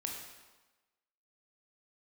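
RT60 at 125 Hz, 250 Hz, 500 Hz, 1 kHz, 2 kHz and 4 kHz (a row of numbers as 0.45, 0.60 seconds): 0.95, 1.1, 1.1, 1.2, 1.1, 1.0 seconds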